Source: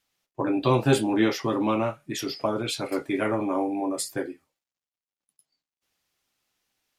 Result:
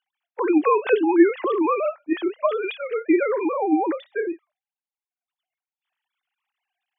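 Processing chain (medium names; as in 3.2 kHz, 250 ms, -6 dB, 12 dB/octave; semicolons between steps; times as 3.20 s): formants replaced by sine waves; trim +4.5 dB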